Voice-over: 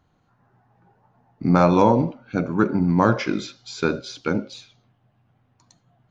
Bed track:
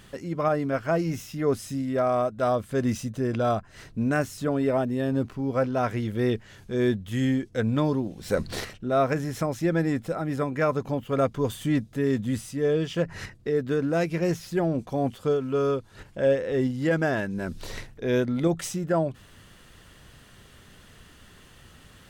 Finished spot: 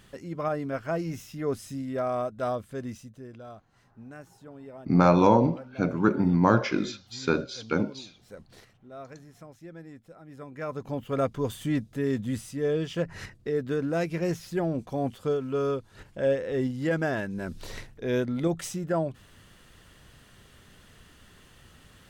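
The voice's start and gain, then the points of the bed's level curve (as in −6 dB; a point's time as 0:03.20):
3.45 s, −3.0 dB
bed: 0:02.48 −5 dB
0:03.47 −20.5 dB
0:10.20 −20.5 dB
0:11.00 −3 dB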